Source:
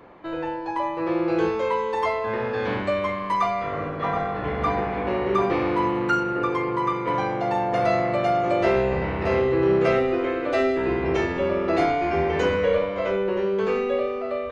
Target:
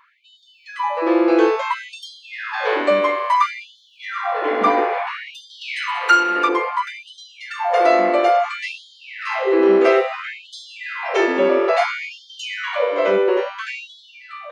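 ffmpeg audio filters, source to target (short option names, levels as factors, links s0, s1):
-filter_complex "[0:a]asettb=1/sr,asplit=3[s0][s1][s2];[s0]atrim=end=5.614[s3];[s1]atrim=start=5.61:end=6.49,asetpts=PTS-STARTPTS,afade=t=in:d=0.004:c=qsin,afade=t=out:st=0.876:d=0.004:c=qsin,tiltshelf=f=880:g=-9.5[s4];[s2]atrim=start=6.486[s5];[s3][s4]acrossfade=d=0.004:c1=hsin:c2=qsin[s6];[s6][s5]acrossfade=d=0.004:c1=qsin:c2=hsin,dynaudnorm=f=240:g=5:m=2.82,afftfilt=real='re*gte(b*sr/1024,210*pow(3100/210,0.5+0.5*sin(2*PI*0.59*pts/sr)))':imag='im*gte(b*sr/1024,210*pow(3100/210,0.5+0.5*sin(2*PI*0.59*pts/sr)))':win_size=1024:overlap=0.75"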